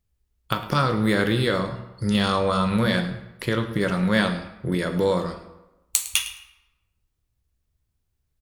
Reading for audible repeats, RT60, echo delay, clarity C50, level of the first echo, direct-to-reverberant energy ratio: 1, 1.0 s, 0.107 s, 9.5 dB, -16.5 dB, 6.5 dB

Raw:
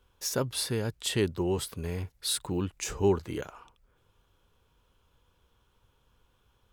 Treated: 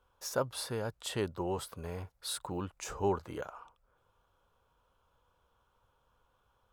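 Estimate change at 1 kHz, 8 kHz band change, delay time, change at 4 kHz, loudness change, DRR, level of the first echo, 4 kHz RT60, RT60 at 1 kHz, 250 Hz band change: +1.0 dB, -8.0 dB, none, -8.0 dB, -6.5 dB, none, none, none, none, -8.0 dB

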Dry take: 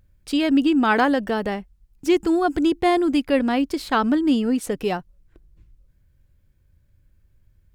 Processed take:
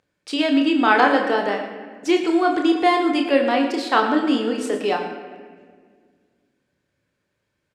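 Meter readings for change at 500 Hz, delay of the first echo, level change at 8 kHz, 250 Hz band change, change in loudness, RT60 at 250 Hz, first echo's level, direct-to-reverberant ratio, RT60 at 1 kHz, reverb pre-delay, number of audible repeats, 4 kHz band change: +2.5 dB, 0.113 s, -0.5 dB, -0.5 dB, +1.5 dB, 2.4 s, -12.0 dB, 2.5 dB, 1.5 s, 29 ms, 1, +4.0 dB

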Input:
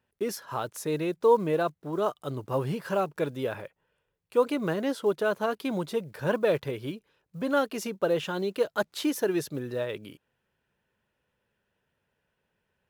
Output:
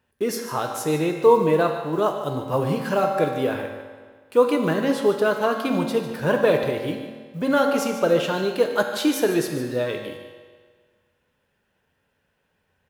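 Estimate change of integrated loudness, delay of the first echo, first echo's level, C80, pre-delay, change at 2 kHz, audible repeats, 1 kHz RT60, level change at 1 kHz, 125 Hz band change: +7.0 dB, 0.148 s, -12.5 dB, 5.5 dB, 4 ms, +7.0 dB, 1, 1.6 s, +7.5 dB, +6.0 dB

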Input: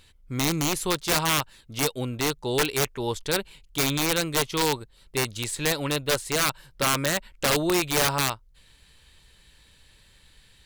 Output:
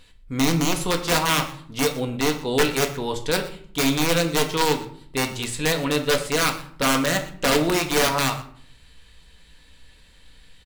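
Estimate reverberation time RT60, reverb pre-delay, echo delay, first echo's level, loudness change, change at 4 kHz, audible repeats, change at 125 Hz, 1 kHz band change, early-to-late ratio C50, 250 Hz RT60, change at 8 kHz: 0.55 s, 4 ms, 0.121 s, -19.5 dB, +3.0 dB, +2.0 dB, 1, +2.5 dB, +3.5 dB, 11.0 dB, 0.85 s, +0.5 dB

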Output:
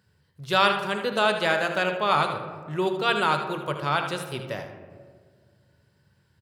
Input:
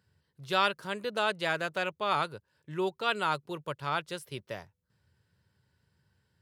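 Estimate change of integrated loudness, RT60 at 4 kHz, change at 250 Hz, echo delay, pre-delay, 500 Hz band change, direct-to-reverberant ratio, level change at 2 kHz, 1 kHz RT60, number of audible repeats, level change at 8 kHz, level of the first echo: +7.0 dB, 0.80 s, +8.0 dB, 77 ms, 4 ms, +7.5 dB, 5.0 dB, +7.0 dB, 1.5 s, 1, +6.5 dB, -9.5 dB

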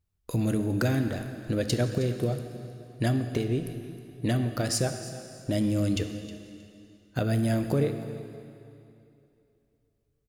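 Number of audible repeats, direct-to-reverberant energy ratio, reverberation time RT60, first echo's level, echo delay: 2, 7.0 dB, 2.8 s, -17.0 dB, 0.315 s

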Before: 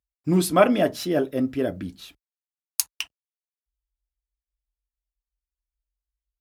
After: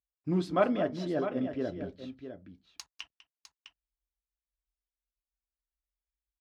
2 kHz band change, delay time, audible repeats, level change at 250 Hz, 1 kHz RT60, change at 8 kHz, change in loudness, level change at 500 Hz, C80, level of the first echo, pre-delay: -10.0 dB, 0.198 s, 2, -8.0 dB, none, -23.0 dB, -8.5 dB, -8.5 dB, none, -16.0 dB, none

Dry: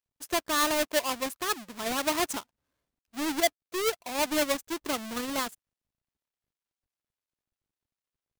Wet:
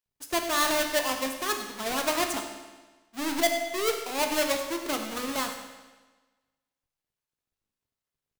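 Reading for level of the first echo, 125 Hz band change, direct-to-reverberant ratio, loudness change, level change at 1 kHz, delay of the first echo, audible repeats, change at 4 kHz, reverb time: -14.5 dB, +1.0 dB, 3.5 dB, +1.5 dB, +1.5 dB, 0.101 s, 1, +1.5 dB, 1.3 s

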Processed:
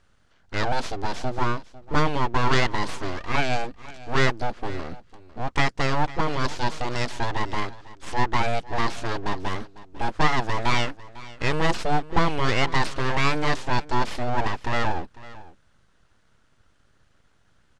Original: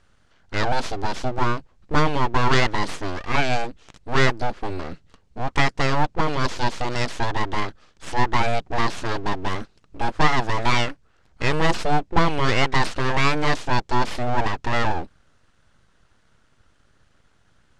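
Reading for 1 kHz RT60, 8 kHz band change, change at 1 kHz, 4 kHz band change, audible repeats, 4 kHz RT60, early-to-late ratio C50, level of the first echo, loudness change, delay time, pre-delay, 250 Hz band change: none, -2.5 dB, -2.5 dB, -2.5 dB, 1, none, none, -18.5 dB, -2.5 dB, 0.5 s, none, -2.5 dB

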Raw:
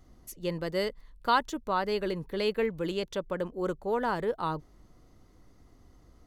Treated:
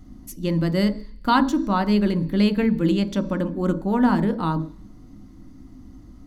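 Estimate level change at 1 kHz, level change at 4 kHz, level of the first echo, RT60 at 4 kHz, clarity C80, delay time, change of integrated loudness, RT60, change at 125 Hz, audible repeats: +5.5 dB, +5.0 dB, none, 0.85 s, 18.5 dB, none, +9.5 dB, 0.50 s, +15.5 dB, none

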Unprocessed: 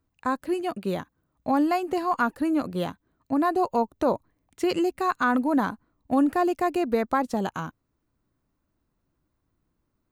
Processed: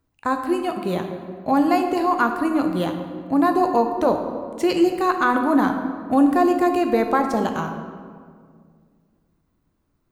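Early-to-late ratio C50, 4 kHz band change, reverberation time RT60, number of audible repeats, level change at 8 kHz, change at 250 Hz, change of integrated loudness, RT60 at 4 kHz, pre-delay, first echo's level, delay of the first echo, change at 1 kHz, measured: 6.5 dB, +5.0 dB, 2.0 s, none, n/a, +5.5 dB, +5.0 dB, 1.1 s, 10 ms, none, none, +5.5 dB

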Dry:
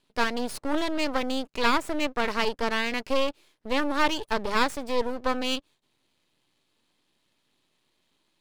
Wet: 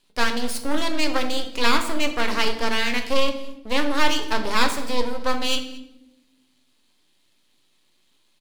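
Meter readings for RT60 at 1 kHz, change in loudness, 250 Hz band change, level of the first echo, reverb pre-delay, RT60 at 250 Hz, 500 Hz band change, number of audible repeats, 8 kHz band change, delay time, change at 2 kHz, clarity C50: 0.75 s, +3.5 dB, +2.5 dB, -22.5 dB, 4 ms, 1.6 s, +2.0 dB, 1, +8.5 dB, 0.223 s, +4.0 dB, 9.5 dB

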